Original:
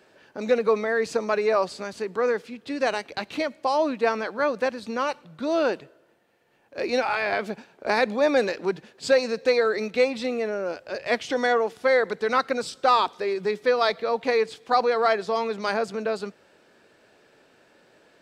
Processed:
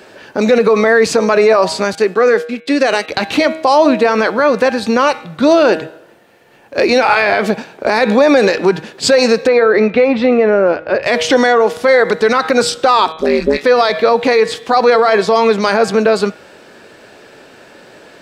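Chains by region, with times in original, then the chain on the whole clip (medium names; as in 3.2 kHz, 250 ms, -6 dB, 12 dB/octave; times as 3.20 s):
1.95–3.08 s: gate -44 dBFS, range -26 dB + high-pass 220 Hz + band-stop 950 Hz, Q 5.3
9.47–11.03 s: low-pass 2.2 kHz + compression, threshold -23 dBFS
13.12–13.63 s: phase dispersion highs, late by 61 ms, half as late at 650 Hz + AM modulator 150 Hz, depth 100%
whole clip: de-hum 159.1 Hz, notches 25; loudness maximiser +19 dB; trim -1 dB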